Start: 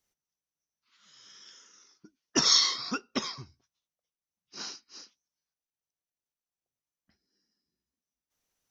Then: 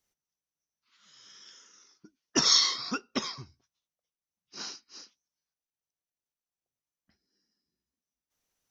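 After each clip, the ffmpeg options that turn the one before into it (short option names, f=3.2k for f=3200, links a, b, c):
-af anull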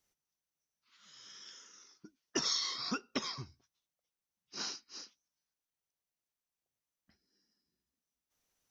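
-af "acompressor=threshold=-32dB:ratio=5"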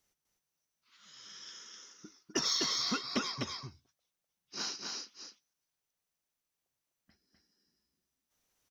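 -filter_complex "[0:a]asplit=2[a][b];[b]asoftclip=type=tanh:threshold=-33dB,volume=-10dB[c];[a][c]amix=inputs=2:normalize=0,aecho=1:1:252:0.668"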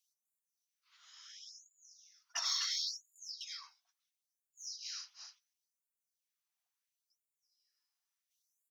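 -af "afftfilt=real='re*gte(b*sr/1024,630*pow(6900/630,0.5+0.5*sin(2*PI*0.72*pts/sr)))':imag='im*gte(b*sr/1024,630*pow(6900/630,0.5+0.5*sin(2*PI*0.72*pts/sr)))':win_size=1024:overlap=0.75,volume=-3dB"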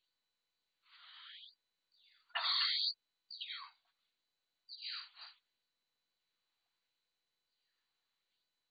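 -af "volume=5dB" -ar 16000 -c:a mp2 -b:a 48k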